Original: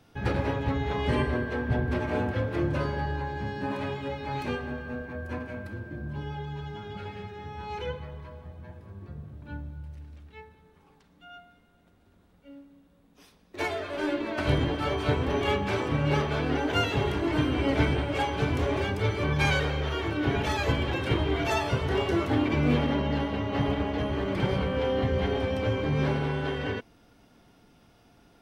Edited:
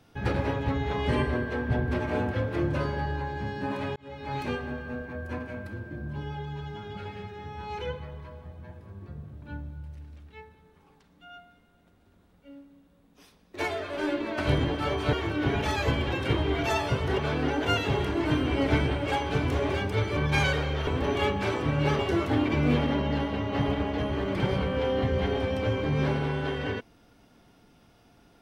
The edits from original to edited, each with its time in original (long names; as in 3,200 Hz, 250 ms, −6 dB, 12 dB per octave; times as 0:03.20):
0:03.96–0:04.34: fade in linear
0:15.13–0:16.25: swap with 0:19.94–0:21.99